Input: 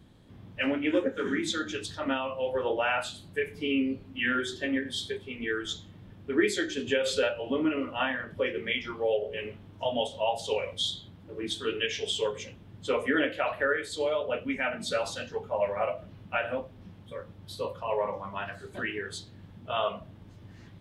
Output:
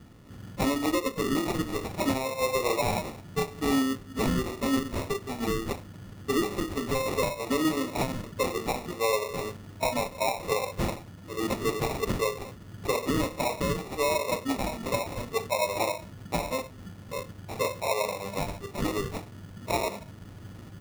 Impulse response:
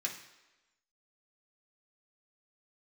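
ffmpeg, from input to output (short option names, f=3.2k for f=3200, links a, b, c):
-af "acrusher=samples=28:mix=1:aa=0.000001,alimiter=limit=-23dB:level=0:latency=1:release=451,volume=5dB"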